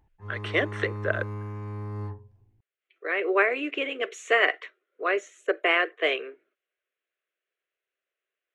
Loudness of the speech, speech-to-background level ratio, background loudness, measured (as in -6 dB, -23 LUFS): -26.5 LUFS, 10.0 dB, -36.5 LUFS